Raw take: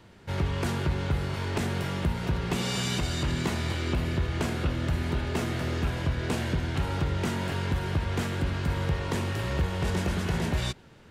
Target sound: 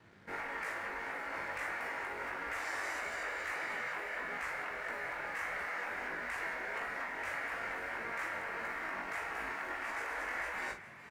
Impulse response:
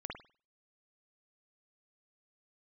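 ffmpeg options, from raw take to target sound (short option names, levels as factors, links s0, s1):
-filter_complex "[0:a]highpass=96,afftfilt=real='re*lt(hypot(re,im),0.0562)':imag='im*lt(hypot(re,im),0.0562)':win_size=1024:overlap=0.75,highshelf=f=2600:t=q:w=3:g=-9,aeval=exprs='sgn(val(0))*max(abs(val(0))-0.00119,0)':c=same,flanger=delay=17:depth=4.9:speed=1.6,asplit=2[s0][s1];[s1]adelay=41,volume=0.422[s2];[s0][s2]amix=inputs=2:normalize=0,asplit=5[s3][s4][s5][s6][s7];[s4]adelay=417,afreqshift=76,volume=0.178[s8];[s5]adelay=834,afreqshift=152,volume=0.0708[s9];[s6]adelay=1251,afreqshift=228,volume=0.0285[s10];[s7]adelay=1668,afreqshift=304,volume=0.0114[s11];[s3][s8][s9][s10][s11]amix=inputs=5:normalize=0"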